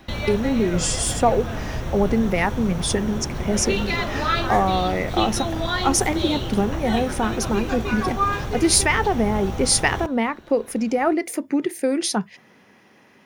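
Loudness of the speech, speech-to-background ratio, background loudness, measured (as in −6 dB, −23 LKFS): −22.5 LKFS, 4.5 dB, −27.0 LKFS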